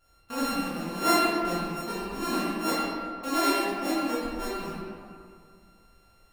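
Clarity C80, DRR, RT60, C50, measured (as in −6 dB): −1.0 dB, −9.0 dB, 2.3 s, −3.0 dB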